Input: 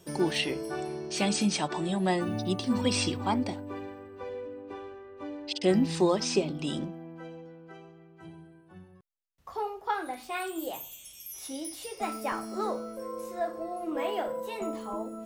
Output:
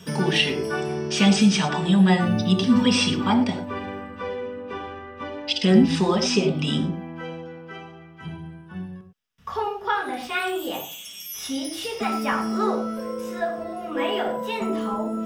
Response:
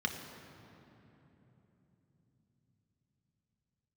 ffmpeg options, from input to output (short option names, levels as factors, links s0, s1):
-filter_complex "[0:a]asettb=1/sr,asplit=3[s0][s1][s2];[s0]atrim=end=10.804[s3];[s1]atrim=start=10.8:end=11.34,asetpts=PTS-STARTPTS,afade=t=in:d=0.004:c=qsin,afade=t=out:st=0.536:d=0.004:c=qsin,highpass=200[s4];[s2]atrim=start=11.336[s5];[s3][s4]acrossfade=d=0.004:c1=hsin:c2=qsin[s6];[s6][s5]acrossfade=d=0.004:c1=qsin:c2=hsin,asplit=2[s7][s8];[s8]acompressor=threshold=0.0126:ratio=6,volume=1.41[s9];[s7][s9]amix=inputs=2:normalize=0[s10];[1:a]atrim=start_sample=2205,afade=t=out:st=0.17:d=0.01,atrim=end_sample=7938[s11];[s10][s11]afir=irnorm=-1:irlink=0,volume=1.12"